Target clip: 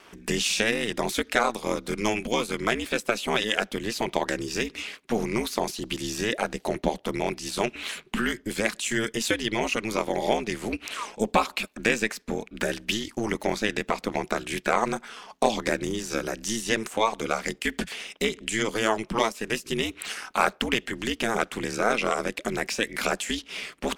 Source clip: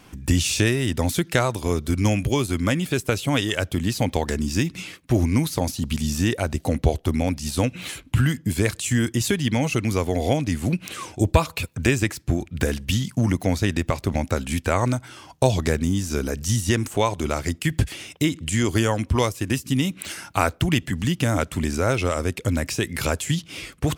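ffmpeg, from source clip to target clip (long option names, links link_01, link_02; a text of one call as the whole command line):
ffmpeg -i in.wav -filter_complex "[0:a]aeval=exprs='val(0)*sin(2*PI*110*n/s)':channel_layout=same,asplit=2[link_01][link_02];[link_02]highpass=frequency=720:poles=1,volume=10dB,asoftclip=type=tanh:threshold=-3.5dB[link_03];[link_01][link_03]amix=inputs=2:normalize=0,lowpass=frequency=3600:poles=1,volume=-6dB,lowshelf=frequency=170:gain=-8.5" out.wav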